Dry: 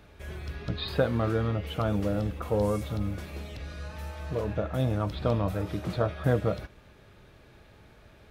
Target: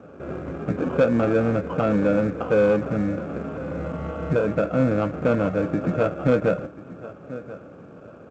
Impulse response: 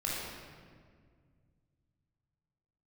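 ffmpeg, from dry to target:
-filter_complex "[0:a]asettb=1/sr,asplit=3[link_01][link_02][link_03];[link_01]atrim=end=3.704[link_04];[link_02]atrim=start=3.7:end=4.37,asetpts=PTS-STARTPTS,afade=type=in:duration=0.004:curve=qsin,afade=type=out:start_time=0.666:duration=0.004:curve=qsin,lowshelf=frequency=240:gain=6.5[link_05];[link_03]atrim=start=4.366[link_06];[link_04][link_05]acrossfade=duration=0.004:curve1=hsin:curve2=qsin[link_07];[link_07][link_06]acrossfade=duration=0.004:curve1=qsin:curve2=hsin,acrusher=samples=22:mix=1:aa=0.000001,asplit=2[link_08][link_09];[link_09]alimiter=level_in=0.5dB:limit=-24dB:level=0:latency=1:release=331,volume=-0.5dB,volume=2dB[link_10];[link_08][link_10]amix=inputs=2:normalize=0,highpass=160,equalizer=frequency=160:width_type=q:width=4:gain=6,equalizer=frequency=260:width_type=q:width=4:gain=7,equalizer=frequency=520:width_type=q:width=4:gain=7,equalizer=frequency=900:width_type=q:width=4:gain=-6,equalizer=frequency=1300:width_type=q:width=4:gain=4,equalizer=frequency=1900:width_type=q:width=4:gain=-8,lowpass=frequency=2100:width=0.5412,lowpass=frequency=2100:width=1.3066,aecho=1:1:1036|2072:0.119|0.0345,asoftclip=type=tanh:threshold=-14dB,volume=3dB" -ar 16000 -c:a pcm_mulaw

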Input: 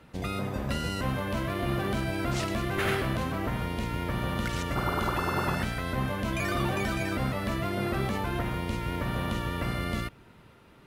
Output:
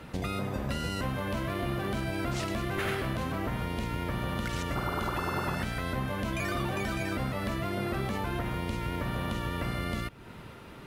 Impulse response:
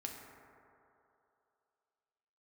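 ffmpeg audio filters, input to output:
-af "acompressor=threshold=-43dB:ratio=2.5,volume=8.5dB"

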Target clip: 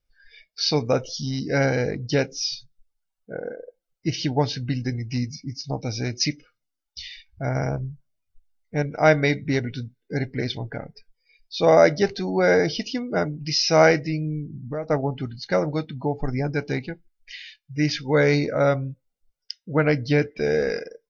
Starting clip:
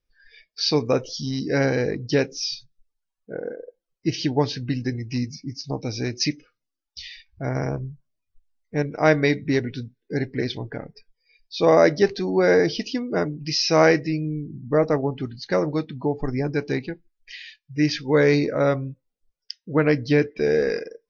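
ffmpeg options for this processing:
ffmpeg -i in.wav -filter_complex "[0:a]asplit=3[link_01][link_02][link_03];[link_01]afade=type=out:start_time=14.46:duration=0.02[link_04];[link_02]acompressor=threshold=-30dB:ratio=3,afade=type=in:start_time=14.46:duration=0.02,afade=type=out:start_time=14.89:duration=0.02[link_05];[link_03]afade=type=in:start_time=14.89:duration=0.02[link_06];[link_04][link_05][link_06]amix=inputs=3:normalize=0,aecho=1:1:1.4:0.35" out.wav

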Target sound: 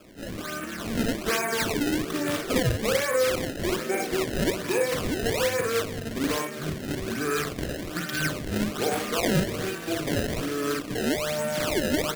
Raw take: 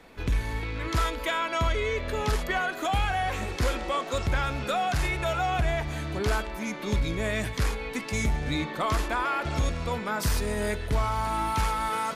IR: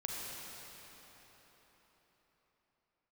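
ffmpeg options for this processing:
-filter_complex "[0:a]acrossover=split=250[link_01][link_02];[link_02]acontrast=61[link_03];[link_01][link_03]amix=inputs=2:normalize=0,asetrate=30296,aresample=44100,atempo=1.45565,lowpass=frequency=5800:width=0.5412,lowpass=frequency=5800:width=1.3066,acrossover=split=220[link_04][link_05];[link_04]acompressor=threshold=-39dB:ratio=2[link_06];[link_06][link_05]amix=inputs=2:normalize=0,highpass=frequency=96:width=0.5412,highpass=frequency=96:width=1.3066,aecho=1:1:39|58:0.473|0.631,acrusher=samples=22:mix=1:aa=0.000001:lfo=1:lforange=35.2:lforate=1.2,equalizer=frequency=870:width=2.8:gain=-13,volume=-2.5dB"

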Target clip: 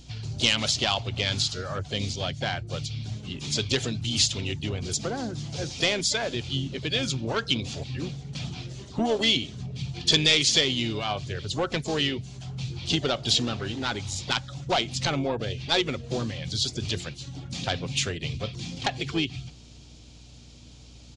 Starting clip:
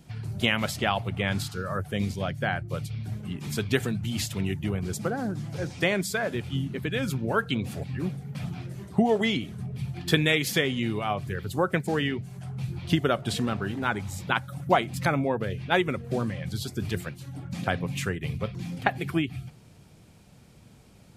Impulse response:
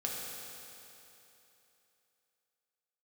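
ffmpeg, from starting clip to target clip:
-filter_complex "[0:a]aeval=exprs='val(0)+0.00355*(sin(2*PI*60*n/s)+sin(2*PI*2*60*n/s)/2+sin(2*PI*3*60*n/s)/3+sin(2*PI*4*60*n/s)/4+sin(2*PI*5*60*n/s)/5)':channel_layout=same,aresample=16000,asoftclip=type=tanh:threshold=-17dB,aresample=44100,highshelf=frequency=2500:width_type=q:width=1.5:gain=10,asplit=2[link_01][link_02];[link_02]asetrate=58866,aresample=44100,atempo=0.749154,volume=-13dB[link_03];[link_01][link_03]amix=inputs=2:normalize=0,equalizer=frequency=190:width=7.9:gain=-11.5"

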